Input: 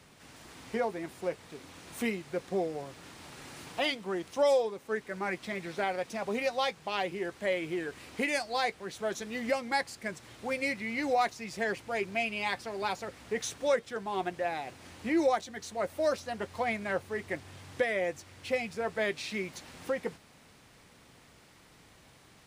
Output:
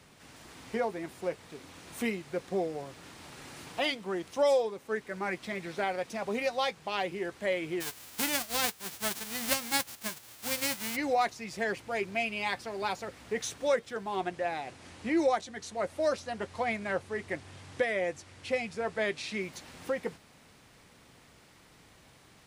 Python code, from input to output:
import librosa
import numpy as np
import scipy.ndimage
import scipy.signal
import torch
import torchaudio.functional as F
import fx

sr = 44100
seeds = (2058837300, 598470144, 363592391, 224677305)

y = fx.envelope_flatten(x, sr, power=0.1, at=(7.8, 10.95), fade=0.02)
y = fx.lowpass(y, sr, hz=11000.0, slope=24, at=(14.16, 19.41))